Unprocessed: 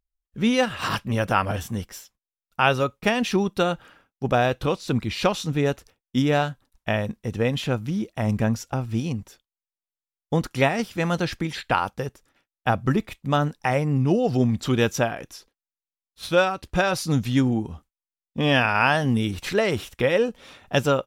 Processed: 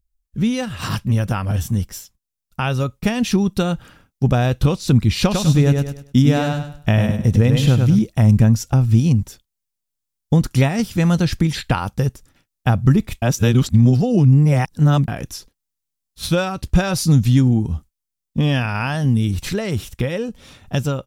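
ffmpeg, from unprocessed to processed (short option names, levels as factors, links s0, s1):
-filter_complex "[0:a]asettb=1/sr,asplit=3[s0][s1][s2];[s0]atrim=end=5.214[s3];[s1]atrim=start=5.21:end=7.99,asetpts=PTS-STARTPTS,afade=t=in:d=0.004:c=qsin,afade=t=out:st=2.776:d=0.004:c=qsin,aecho=1:1:100|200|300|400:0.562|0.157|0.0441|0.0123,atrim=end_sample=122598[s4];[s2]atrim=start=7.986[s5];[s3][s4]acrossfade=d=0.004:c1=hsin:c2=qsin[s6];[s6][s5]acrossfade=d=0.004:c1=qsin:c2=hsin,asplit=3[s7][s8][s9];[s7]atrim=end=13.222[s10];[s8]atrim=start=13.218:end=15.082,asetpts=PTS-STARTPTS,areverse[s11];[s9]atrim=start=15.078[s12];[s10][s11]acrossfade=d=0.004:c1=hsin:c2=hsin[s13];[s13][s12]acrossfade=d=0.004:c1=hsin:c2=hsin,acompressor=threshold=0.0562:ratio=2,bass=f=250:g=14,treble=f=4000:g=8,dynaudnorm=f=310:g=21:m=3.76,volume=0.891"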